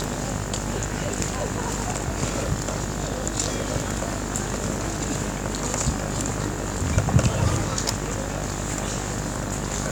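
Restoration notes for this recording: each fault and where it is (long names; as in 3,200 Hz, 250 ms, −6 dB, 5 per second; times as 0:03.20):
mains buzz 50 Hz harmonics 38 −31 dBFS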